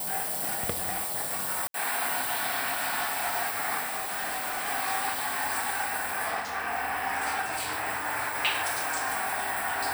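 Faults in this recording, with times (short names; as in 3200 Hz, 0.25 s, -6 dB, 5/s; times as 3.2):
3.8–4.69 clipped -28 dBFS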